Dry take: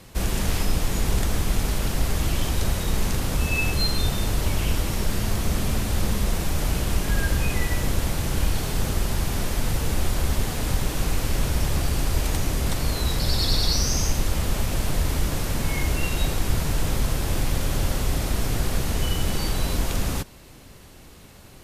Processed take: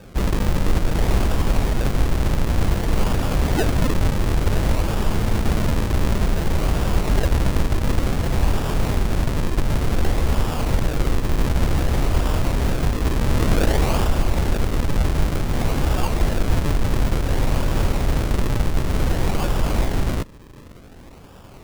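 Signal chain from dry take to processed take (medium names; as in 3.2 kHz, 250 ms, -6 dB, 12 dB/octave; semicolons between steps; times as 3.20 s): decimation with a swept rate 42×, swing 100% 0.55 Hz; trim +4 dB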